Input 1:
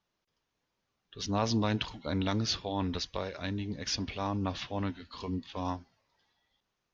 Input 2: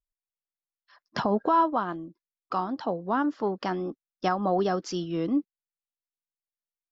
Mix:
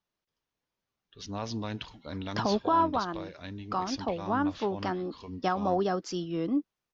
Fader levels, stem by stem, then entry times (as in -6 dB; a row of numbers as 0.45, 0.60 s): -6.0, -2.5 dB; 0.00, 1.20 s